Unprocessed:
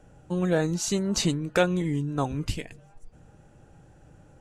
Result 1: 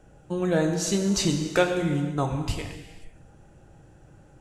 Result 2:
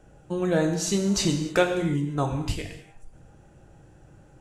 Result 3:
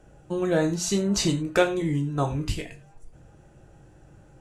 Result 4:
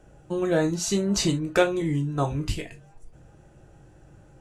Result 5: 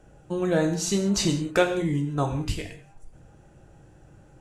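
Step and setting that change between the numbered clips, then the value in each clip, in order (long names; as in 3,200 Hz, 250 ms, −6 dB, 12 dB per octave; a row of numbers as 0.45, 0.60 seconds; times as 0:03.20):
reverb whose tail is shaped and stops, gate: 530, 330, 130, 90, 220 milliseconds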